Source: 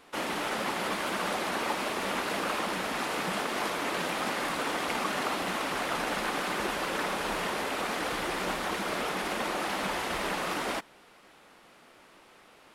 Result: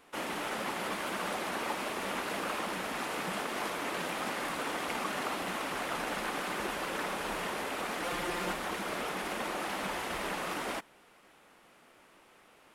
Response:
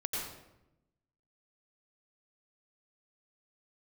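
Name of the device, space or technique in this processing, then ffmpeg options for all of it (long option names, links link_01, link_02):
exciter from parts: -filter_complex "[0:a]asettb=1/sr,asplit=3[link_01][link_02][link_03];[link_01]atrim=end=8.034[link_04];[link_02]atrim=start=8.03:end=8.53,asetpts=PTS-STARTPTS,afade=type=in:duration=0.004:curve=qsin,afade=type=out:start_time=0.496:duration=0.004:curve=qsin,aecho=1:1:5.7:0.61,atrim=end_sample=22050[link_05];[link_03]atrim=start=8.526[link_06];[link_04][link_05]acrossfade=duration=0.004:curve1=hsin:curve2=qsin[link_07];[link_07][link_06]acrossfade=duration=0.004:curve1=qsin:curve2=hsin,asplit=2[link_08][link_09];[link_09]highpass=frequency=3300:poles=1,asoftclip=type=tanh:threshold=-38dB,highpass=frequency=3400:width=0.5412,highpass=frequency=3400:width=1.3066,volume=-8dB[link_10];[link_08][link_10]amix=inputs=2:normalize=0,volume=-4dB"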